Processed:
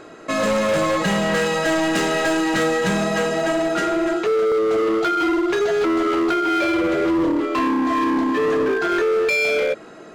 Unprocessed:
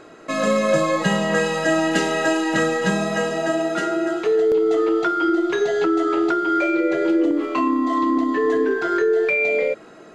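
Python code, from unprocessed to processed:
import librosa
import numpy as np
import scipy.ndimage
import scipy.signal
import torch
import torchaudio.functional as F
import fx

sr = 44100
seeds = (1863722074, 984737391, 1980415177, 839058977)

y = np.clip(x, -10.0 ** (-19.5 / 20.0), 10.0 ** (-19.5 / 20.0))
y = y * 10.0 ** (3.0 / 20.0)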